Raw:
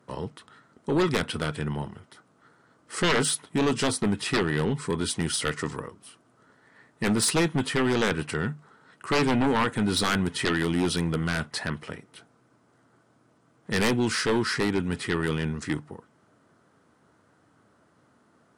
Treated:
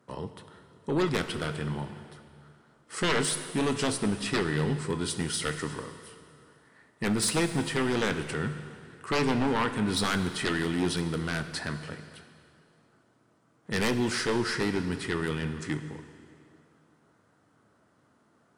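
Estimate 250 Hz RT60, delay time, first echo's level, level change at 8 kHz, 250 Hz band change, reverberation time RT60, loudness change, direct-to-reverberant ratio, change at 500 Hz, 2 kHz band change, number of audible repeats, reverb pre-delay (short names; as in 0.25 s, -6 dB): 2.4 s, none, none, -3.0 dB, -3.0 dB, 2.4 s, -3.0 dB, 9.0 dB, -3.0 dB, -3.0 dB, none, 7 ms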